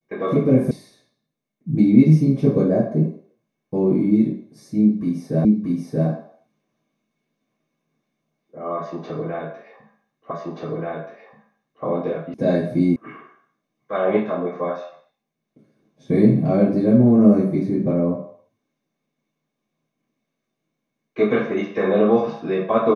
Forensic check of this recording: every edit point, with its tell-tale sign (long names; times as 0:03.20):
0:00.71: cut off before it has died away
0:05.45: the same again, the last 0.63 s
0:10.31: the same again, the last 1.53 s
0:12.34: cut off before it has died away
0:12.96: cut off before it has died away